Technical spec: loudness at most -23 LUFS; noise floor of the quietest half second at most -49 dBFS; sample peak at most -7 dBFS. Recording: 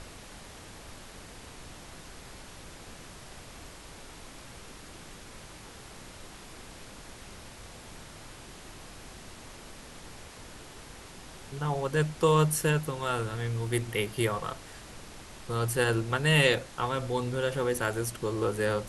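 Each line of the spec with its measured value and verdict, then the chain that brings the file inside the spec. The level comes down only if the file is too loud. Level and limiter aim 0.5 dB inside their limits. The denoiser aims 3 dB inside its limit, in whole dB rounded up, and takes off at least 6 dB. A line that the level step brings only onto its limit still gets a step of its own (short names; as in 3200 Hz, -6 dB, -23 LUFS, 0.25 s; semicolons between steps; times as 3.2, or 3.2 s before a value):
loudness -28.5 LUFS: OK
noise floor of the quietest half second -47 dBFS: fail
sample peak -10.5 dBFS: OK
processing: denoiser 6 dB, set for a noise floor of -47 dBFS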